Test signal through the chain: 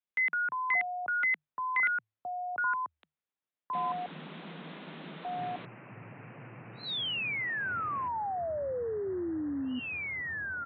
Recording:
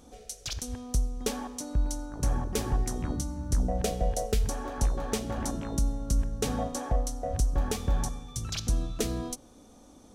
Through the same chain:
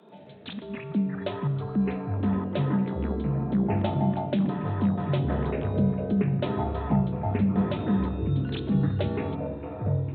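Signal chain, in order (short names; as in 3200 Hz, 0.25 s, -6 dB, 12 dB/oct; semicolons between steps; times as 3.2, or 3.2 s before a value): downsampling 8000 Hz; frequency shift +150 Hz; echoes that change speed 88 ms, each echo -6 st, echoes 3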